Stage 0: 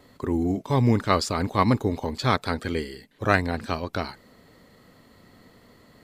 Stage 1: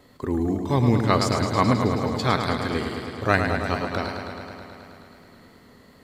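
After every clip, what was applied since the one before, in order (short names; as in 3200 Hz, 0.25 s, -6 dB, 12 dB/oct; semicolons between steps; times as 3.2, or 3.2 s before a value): warbling echo 0.107 s, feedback 79%, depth 57 cents, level -7 dB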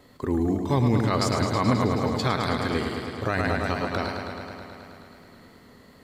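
limiter -12 dBFS, peak gain reduction 9 dB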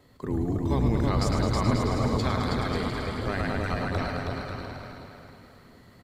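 octaver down 1 oct, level 0 dB; bouncing-ball echo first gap 0.32 s, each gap 0.7×, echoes 5; gain -5.5 dB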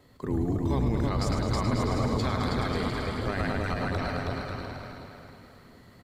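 limiter -18 dBFS, peak gain reduction 6 dB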